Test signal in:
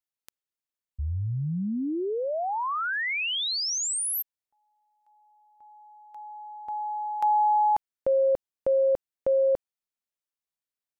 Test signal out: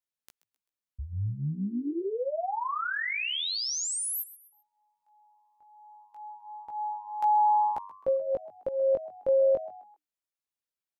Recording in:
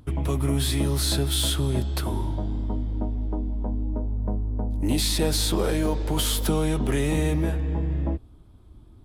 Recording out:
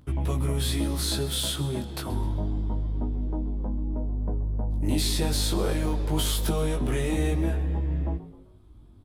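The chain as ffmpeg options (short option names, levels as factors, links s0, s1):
-filter_complex "[0:a]flanger=delay=15.5:depth=5.1:speed=0.27,asplit=4[s0][s1][s2][s3];[s1]adelay=130,afreqshift=99,volume=0.141[s4];[s2]adelay=260,afreqshift=198,volume=0.0537[s5];[s3]adelay=390,afreqshift=297,volume=0.0204[s6];[s0][s4][s5][s6]amix=inputs=4:normalize=0"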